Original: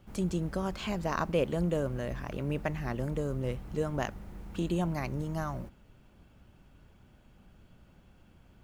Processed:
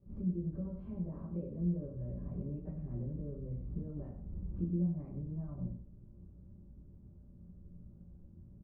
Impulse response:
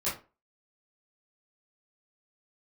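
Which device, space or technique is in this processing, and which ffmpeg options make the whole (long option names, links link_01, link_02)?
television next door: -filter_complex "[0:a]highshelf=frequency=5400:gain=9.5,acompressor=threshold=-38dB:ratio=6,lowpass=280[link_01];[1:a]atrim=start_sample=2205[link_02];[link_01][link_02]afir=irnorm=-1:irlink=0,aecho=1:1:92:0.335,volume=-3.5dB"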